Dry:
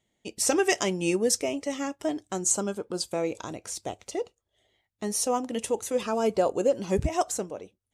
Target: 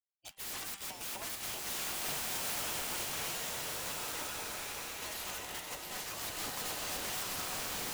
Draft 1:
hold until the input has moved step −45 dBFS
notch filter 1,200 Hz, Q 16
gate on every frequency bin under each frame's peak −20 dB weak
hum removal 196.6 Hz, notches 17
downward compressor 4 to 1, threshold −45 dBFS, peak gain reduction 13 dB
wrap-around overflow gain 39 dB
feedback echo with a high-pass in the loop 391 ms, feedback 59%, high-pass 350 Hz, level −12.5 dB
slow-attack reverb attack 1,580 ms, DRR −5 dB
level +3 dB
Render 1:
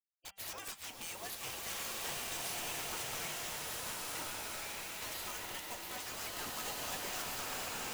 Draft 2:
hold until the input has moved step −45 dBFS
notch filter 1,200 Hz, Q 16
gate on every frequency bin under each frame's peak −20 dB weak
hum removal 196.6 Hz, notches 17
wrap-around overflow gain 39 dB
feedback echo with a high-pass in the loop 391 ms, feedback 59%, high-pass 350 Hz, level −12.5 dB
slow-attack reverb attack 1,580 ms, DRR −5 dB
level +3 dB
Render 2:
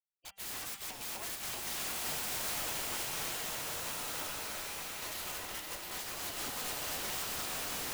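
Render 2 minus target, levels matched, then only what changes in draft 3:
hold until the input has moved: distortion +13 dB
change: hold until the input has moved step −57 dBFS

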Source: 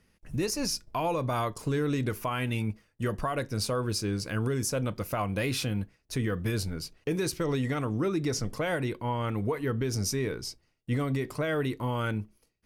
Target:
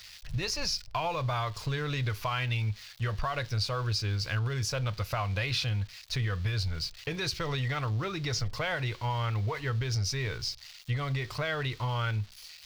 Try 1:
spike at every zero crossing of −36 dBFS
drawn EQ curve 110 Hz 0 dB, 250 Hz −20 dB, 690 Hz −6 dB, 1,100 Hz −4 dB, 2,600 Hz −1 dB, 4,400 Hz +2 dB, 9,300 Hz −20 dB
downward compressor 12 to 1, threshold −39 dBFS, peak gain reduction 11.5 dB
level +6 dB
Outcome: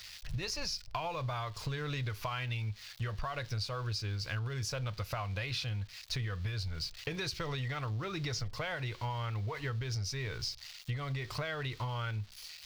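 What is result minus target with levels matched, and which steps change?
downward compressor: peak gain reduction +6.5 dB
change: downward compressor 12 to 1, threshold −32 dBFS, peak gain reduction 5 dB

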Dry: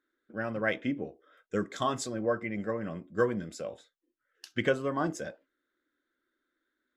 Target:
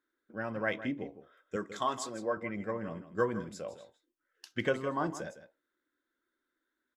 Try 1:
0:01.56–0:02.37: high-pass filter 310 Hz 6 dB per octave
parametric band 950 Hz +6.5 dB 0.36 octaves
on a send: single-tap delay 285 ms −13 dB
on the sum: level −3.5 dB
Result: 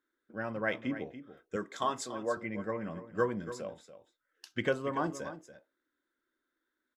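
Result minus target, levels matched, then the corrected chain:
echo 126 ms late
0:01.56–0:02.37: high-pass filter 310 Hz 6 dB per octave
parametric band 950 Hz +6.5 dB 0.36 octaves
on a send: single-tap delay 159 ms −13 dB
on the sum: level −3.5 dB

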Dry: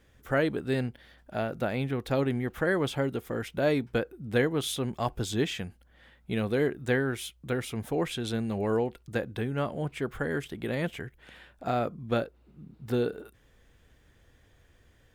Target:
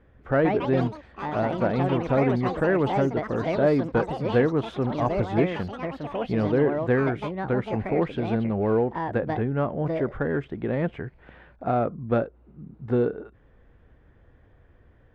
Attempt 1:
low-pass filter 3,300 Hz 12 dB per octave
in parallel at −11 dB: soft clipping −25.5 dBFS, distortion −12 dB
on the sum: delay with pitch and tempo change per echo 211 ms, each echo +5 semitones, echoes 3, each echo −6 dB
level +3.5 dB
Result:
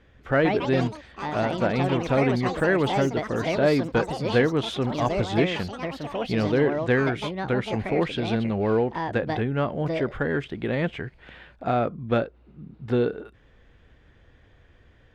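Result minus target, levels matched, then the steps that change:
4,000 Hz band +9.0 dB
change: low-pass filter 1,400 Hz 12 dB per octave

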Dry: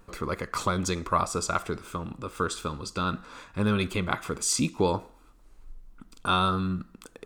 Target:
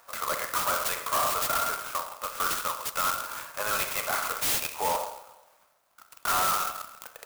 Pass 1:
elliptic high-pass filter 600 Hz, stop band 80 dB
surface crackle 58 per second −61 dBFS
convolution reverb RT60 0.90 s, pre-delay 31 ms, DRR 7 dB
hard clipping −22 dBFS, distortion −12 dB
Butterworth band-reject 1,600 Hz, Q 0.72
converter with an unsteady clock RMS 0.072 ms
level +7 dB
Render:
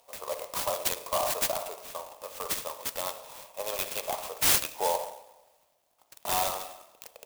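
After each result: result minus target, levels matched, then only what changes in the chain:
2,000 Hz band −4.5 dB; hard clipping: distortion −7 dB
remove: Butterworth band-reject 1,600 Hz, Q 0.72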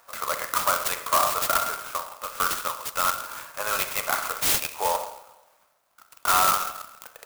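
hard clipping: distortion −7 dB
change: hard clipping −30 dBFS, distortion −5 dB

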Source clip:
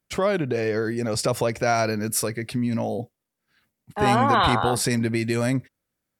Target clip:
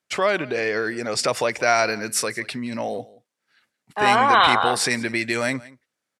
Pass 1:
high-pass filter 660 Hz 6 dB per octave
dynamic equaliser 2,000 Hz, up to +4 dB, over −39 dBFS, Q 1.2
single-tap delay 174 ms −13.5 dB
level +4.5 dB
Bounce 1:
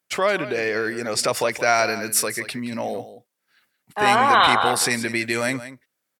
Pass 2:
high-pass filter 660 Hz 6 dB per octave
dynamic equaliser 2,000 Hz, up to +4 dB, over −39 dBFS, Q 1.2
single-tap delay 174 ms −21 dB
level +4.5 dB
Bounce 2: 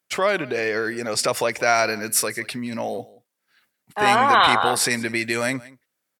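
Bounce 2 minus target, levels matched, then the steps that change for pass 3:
8,000 Hz band +2.5 dB
add after dynamic equaliser: low-pass filter 8,400 Hz 12 dB per octave

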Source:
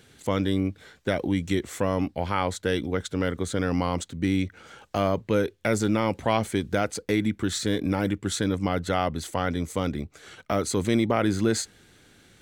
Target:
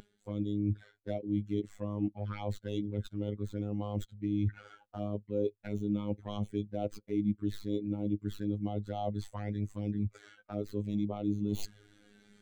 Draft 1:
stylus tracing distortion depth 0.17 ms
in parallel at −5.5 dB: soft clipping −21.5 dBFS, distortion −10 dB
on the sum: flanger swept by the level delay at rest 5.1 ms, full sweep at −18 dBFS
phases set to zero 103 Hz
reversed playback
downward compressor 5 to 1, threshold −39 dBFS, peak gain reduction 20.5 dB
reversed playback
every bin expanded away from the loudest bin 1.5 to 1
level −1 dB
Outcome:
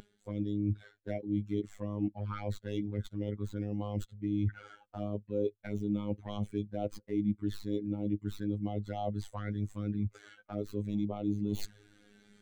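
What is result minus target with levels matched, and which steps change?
soft clipping: distortion +12 dB
change: soft clipping −12 dBFS, distortion −22 dB

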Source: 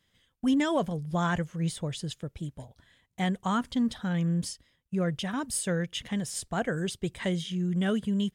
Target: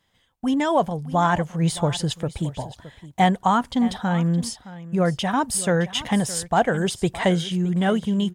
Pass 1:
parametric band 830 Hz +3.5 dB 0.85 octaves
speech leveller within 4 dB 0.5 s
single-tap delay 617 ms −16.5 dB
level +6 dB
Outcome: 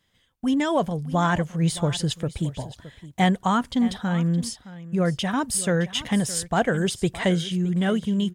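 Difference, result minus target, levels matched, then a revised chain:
1,000 Hz band −3.5 dB
parametric band 830 Hz +10.5 dB 0.85 octaves
speech leveller within 4 dB 0.5 s
single-tap delay 617 ms −16.5 dB
level +6 dB

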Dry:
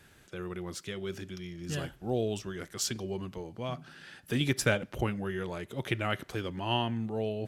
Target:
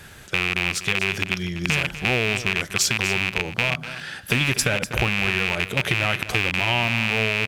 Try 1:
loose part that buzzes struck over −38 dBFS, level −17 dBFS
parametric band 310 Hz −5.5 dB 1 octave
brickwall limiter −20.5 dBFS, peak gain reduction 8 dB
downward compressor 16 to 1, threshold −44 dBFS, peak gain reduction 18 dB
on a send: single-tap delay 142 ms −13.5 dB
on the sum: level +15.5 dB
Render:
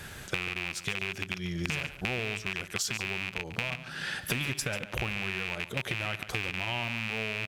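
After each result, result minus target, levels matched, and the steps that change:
downward compressor: peak gain reduction +11 dB; echo 104 ms early
change: downward compressor 16 to 1, threshold −32 dBFS, peak gain reduction 6.5 dB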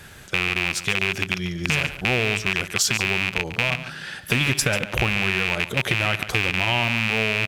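echo 104 ms early
change: single-tap delay 246 ms −13.5 dB

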